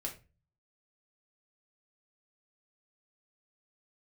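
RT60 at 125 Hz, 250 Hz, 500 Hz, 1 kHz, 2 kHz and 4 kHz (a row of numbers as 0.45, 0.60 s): 0.70, 0.45, 0.35, 0.25, 0.30, 0.25 s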